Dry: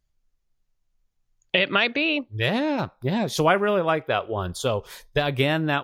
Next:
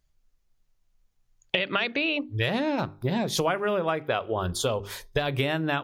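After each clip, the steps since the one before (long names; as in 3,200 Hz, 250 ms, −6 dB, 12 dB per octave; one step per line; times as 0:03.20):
mains-hum notches 50/100/150/200/250/300/350/400 Hz
downward compressor 4 to 1, threshold −27 dBFS, peak gain reduction 11.5 dB
level +3.5 dB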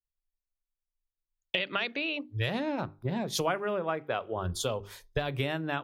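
multiband upward and downward expander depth 70%
level −5 dB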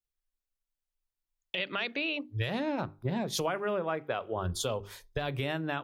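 brickwall limiter −20 dBFS, peak gain reduction 8.5 dB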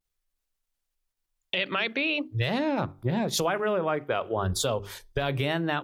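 in parallel at +0.5 dB: output level in coarse steps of 13 dB
on the sum: pitch vibrato 0.93 Hz 77 cents
level +2 dB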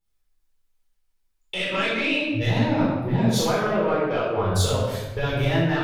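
soft clipping −18 dBFS, distortion −19 dB
rectangular room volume 590 cubic metres, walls mixed, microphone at 4.2 metres
level −4.5 dB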